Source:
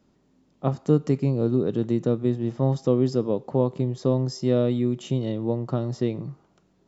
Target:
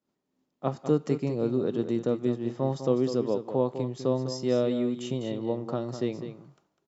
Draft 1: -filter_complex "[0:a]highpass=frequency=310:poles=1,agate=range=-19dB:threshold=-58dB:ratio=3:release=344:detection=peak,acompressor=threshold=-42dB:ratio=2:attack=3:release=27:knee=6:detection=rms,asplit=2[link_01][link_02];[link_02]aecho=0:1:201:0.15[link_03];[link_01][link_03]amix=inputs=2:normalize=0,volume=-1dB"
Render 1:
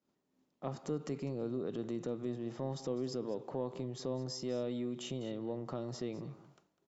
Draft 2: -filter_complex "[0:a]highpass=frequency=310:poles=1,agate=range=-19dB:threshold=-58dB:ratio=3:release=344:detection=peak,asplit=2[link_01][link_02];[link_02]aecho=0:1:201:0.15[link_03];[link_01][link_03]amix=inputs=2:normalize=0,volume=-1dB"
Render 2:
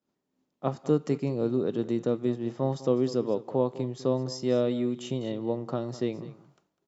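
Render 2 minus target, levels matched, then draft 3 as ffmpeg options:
echo-to-direct −6.5 dB
-filter_complex "[0:a]highpass=frequency=310:poles=1,agate=range=-19dB:threshold=-58dB:ratio=3:release=344:detection=peak,asplit=2[link_01][link_02];[link_02]aecho=0:1:201:0.316[link_03];[link_01][link_03]amix=inputs=2:normalize=0,volume=-1dB"

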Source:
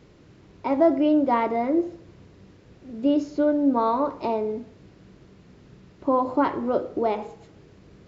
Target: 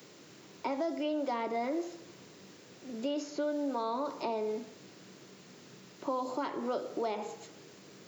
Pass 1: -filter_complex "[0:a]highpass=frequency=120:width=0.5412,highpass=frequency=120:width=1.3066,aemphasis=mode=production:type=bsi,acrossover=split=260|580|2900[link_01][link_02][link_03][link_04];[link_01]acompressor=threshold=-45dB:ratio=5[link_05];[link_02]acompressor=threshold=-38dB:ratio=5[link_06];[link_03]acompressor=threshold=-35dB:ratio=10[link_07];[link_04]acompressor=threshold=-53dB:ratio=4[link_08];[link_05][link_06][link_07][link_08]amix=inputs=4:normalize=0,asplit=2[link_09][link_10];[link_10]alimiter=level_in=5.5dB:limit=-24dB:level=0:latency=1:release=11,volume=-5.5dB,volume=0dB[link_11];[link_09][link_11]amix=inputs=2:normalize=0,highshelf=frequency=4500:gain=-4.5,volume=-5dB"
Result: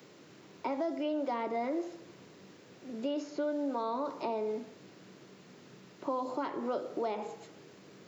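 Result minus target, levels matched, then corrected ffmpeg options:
8,000 Hz band −6.5 dB
-filter_complex "[0:a]highpass=frequency=120:width=0.5412,highpass=frequency=120:width=1.3066,aemphasis=mode=production:type=bsi,acrossover=split=260|580|2900[link_01][link_02][link_03][link_04];[link_01]acompressor=threshold=-45dB:ratio=5[link_05];[link_02]acompressor=threshold=-38dB:ratio=5[link_06];[link_03]acompressor=threshold=-35dB:ratio=10[link_07];[link_04]acompressor=threshold=-53dB:ratio=4[link_08];[link_05][link_06][link_07][link_08]amix=inputs=4:normalize=0,asplit=2[link_09][link_10];[link_10]alimiter=level_in=5.5dB:limit=-24dB:level=0:latency=1:release=11,volume=-5.5dB,volume=0dB[link_11];[link_09][link_11]amix=inputs=2:normalize=0,highshelf=frequency=4500:gain=5,volume=-5dB"

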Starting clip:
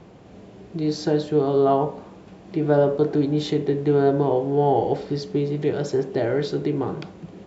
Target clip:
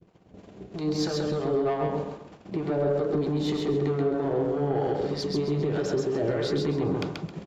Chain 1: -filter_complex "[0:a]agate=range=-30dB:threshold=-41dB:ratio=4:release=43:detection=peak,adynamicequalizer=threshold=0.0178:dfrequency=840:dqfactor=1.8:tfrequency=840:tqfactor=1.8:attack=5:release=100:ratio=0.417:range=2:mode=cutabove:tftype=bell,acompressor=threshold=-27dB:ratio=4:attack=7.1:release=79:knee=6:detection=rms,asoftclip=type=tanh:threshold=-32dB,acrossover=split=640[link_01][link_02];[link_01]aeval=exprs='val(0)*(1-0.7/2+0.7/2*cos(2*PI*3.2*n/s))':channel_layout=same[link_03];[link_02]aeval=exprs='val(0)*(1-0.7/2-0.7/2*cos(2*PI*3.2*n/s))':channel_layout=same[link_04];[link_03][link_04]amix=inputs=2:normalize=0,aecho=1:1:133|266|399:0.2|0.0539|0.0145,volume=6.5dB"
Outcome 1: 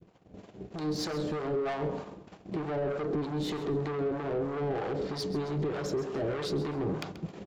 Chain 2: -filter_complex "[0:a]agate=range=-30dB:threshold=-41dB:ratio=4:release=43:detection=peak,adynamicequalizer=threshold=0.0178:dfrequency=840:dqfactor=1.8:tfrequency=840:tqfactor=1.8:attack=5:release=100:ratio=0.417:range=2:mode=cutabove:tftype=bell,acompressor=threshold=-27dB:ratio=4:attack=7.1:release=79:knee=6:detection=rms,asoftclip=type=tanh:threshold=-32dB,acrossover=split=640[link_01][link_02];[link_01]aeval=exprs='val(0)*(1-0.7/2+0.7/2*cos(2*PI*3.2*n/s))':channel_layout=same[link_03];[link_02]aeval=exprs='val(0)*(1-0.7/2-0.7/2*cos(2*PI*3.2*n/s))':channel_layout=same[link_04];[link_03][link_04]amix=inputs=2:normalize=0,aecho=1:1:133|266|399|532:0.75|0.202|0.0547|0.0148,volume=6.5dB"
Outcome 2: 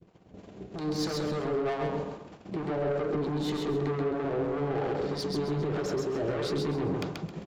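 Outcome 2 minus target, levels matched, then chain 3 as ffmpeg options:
soft clipping: distortion +8 dB
-filter_complex "[0:a]agate=range=-30dB:threshold=-41dB:ratio=4:release=43:detection=peak,adynamicequalizer=threshold=0.0178:dfrequency=840:dqfactor=1.8:tfrequency=840:tqfactor=1.8:attack=5:release=100:ratio=0.417:range=2:mode=cutabove:tftype=bell,acompressor=threshold=-27dB:ratio=4:attack=7.1:release=79:knee=6:detection=rms,asoftclip=type=tanh:threshold=-24.5dB,acrossover=split=640[link_01][link_02];[link_01]aeval=exprs='val(0)*(1-0.7/2+0.7/2*cos(2*PI*3.2*n/s))':channel_layout=same[link_03];[link_02]aeval=exprs='val(0)*(1-0.7/2-0.7/2*cos(2*PI*3.2*n/s))':channel_layout=same[link_04];[link_03][link_04]amix=inputs=2:normalize=0,aecho=1:1:133|266|399|532:0.75|0.202|0.0547|0.0148,volume=6.5dB"

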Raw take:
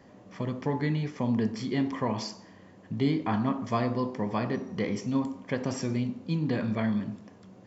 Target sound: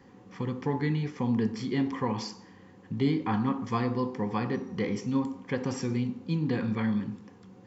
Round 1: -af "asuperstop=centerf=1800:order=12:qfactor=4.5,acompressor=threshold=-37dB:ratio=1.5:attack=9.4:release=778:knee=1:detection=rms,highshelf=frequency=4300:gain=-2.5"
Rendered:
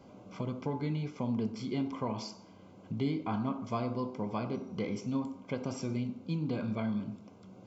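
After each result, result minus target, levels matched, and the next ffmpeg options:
downward compressor: peak gain reduction +6.5 dB; 2,000 Hz band −3.5 dB
-af "asuperstop=centerf=1800:order=12:qfactor=4.5,highshelf=frequency=4300:gain=-2.5"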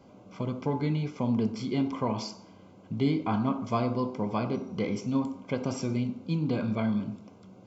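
2,000 Hz band −4.0 dB
-af "asuperstop=centerf=630:order=12:qfactor=4.5,highshelf=frequency=4300:gain=-2.5"

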